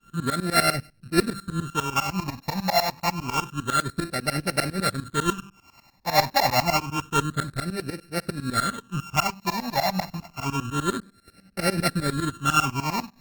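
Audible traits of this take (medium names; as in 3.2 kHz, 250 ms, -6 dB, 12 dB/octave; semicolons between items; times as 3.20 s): a buzz of ramps at a fixed pitch in blocks of 32 samples; tremolo saw up 10 Hz, depth 95%; phasing stages 8, 0.28 Hz, lowest notch 400–1000 Hz; Opus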